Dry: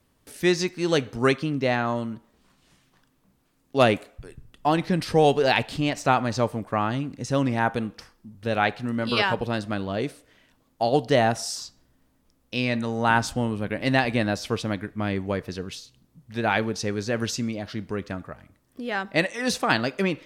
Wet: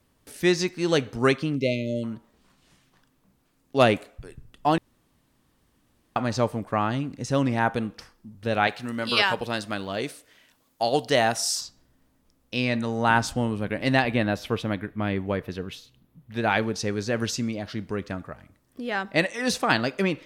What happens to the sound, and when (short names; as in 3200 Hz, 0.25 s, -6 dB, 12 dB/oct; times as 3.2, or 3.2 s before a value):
1.56–2.04 spectral delete 640–2000 Hz
4.78–6.16 room tone
8.67–11.61 tilt +2 dB/oct
14.02–16.37 band shelf 6400 Hz -8 dB 1.3 oct